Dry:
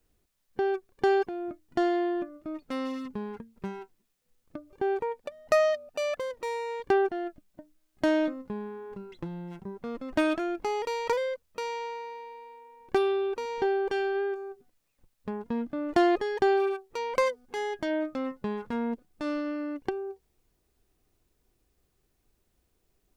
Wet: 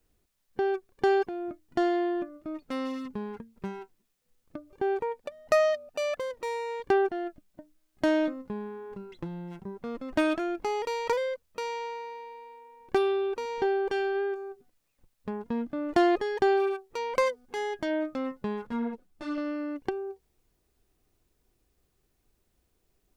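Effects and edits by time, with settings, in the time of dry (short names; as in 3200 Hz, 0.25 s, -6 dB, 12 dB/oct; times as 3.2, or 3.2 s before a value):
18.67–19.38 ensemble effect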